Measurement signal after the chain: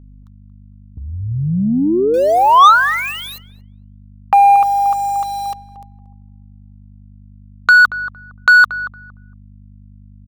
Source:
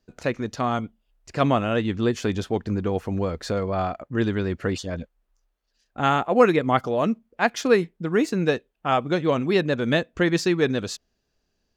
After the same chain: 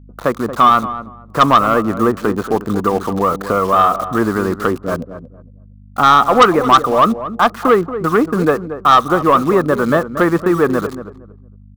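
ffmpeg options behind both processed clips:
-filter_complex "[0:a]lowpass=f=1.2k:t=q:w=7.8,acrossover=split=930[a][b];[b]acrusher=bits=6:mix=0:aa=0.000001[c];[a][c]amix=inputs=2:normalize=0,agate=range=-33dB:threshold=-37dB:ratio=3:detection=peak,asplit=2[d][e];[e]acompressor=threshold=-26dB:ratio=6,volume=-2dB[f];[d][f]amix=inputs=2:normalize=0,highpass=150,aeval=exprs='val(0)+0.00562*(sin(2*PI*50*n/s)+sin(2*PI*2*50*n/s)/2+sin(2*PI*3*50*n/s)/3+sin(2*PI*4*50*n/s)/4+sin(2*PI*5*50*n/s)/5)':c=same,asoftclip=type=tanh:threshold=-8.5dB,asplit=2[g][h];[h]adelay=230,lowpass=f=950:p=1,volume=-10.5dB,asplit=2[i][j];[j]adelay=230,lowpass=f=950:p=1,volume=0.25,asplit=2[k][l];[l]adelay=230,lowpass=f=950:p=1,volume=0.25[m];[g][i][k][m]amix=inputs=4:normalize=0,volume=5.5dB"

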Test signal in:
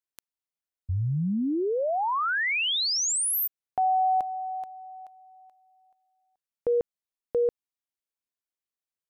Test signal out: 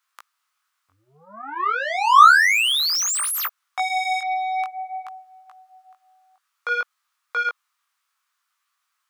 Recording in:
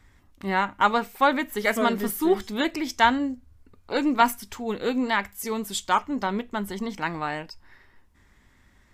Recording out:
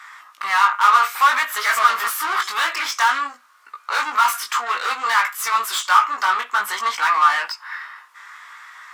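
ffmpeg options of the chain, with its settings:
-filter_complex "[0:a]asplit=2[a][b];[b]highpass=f=720:p=1,volume=35dB,asoftclip=type=tanh:threshold=-4.5dB[c];[a][c]amix=inputs=2:normalize=0,lowpass=f=7.4k:p=1,volume=-6dB,flanger=delay=16.5:depth=5.1:speed=0.56,highpass=f=1.2k:t=q:w=4.8,volume=-7dB"

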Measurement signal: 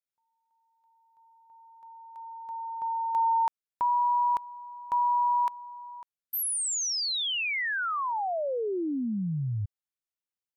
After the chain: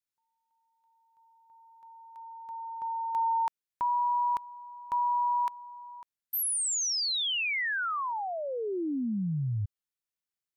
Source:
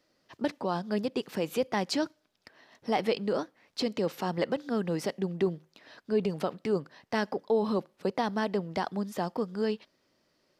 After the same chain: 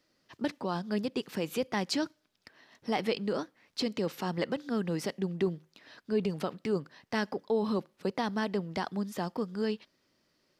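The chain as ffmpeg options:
-af "equalizer=f=640:t=o:w=1.4:g=-4.5"

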